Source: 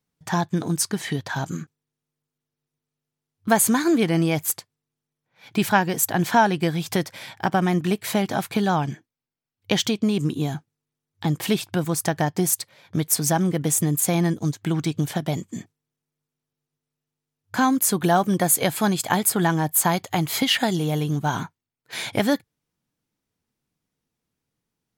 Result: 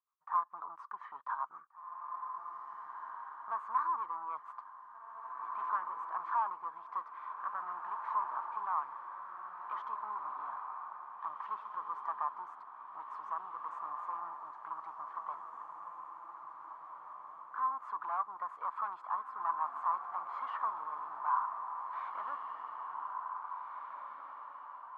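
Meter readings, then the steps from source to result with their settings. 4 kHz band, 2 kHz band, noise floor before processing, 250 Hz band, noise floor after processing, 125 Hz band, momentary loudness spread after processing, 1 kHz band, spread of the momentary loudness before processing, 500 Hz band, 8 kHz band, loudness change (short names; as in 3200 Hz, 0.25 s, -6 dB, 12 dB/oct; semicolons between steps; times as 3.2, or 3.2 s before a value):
under -35 dB, -21.0 dB, under -85 dBFS, under -40 dB, -53 dBFS, under -40 dB, 13 LU, -7.5 dB, 10 LU, -30.5 dB, under -40 dB, -17.0 dB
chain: rotary speaker horn 7.5 Hz, later 1.2 Hz, at 2.86; tube stage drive 26 dB, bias 0.4; Butterworth band-pass 1100 Hz, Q 4.6; diffused feedback echo 1.937 s, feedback 42%, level -4.5 dB; gain +10 dB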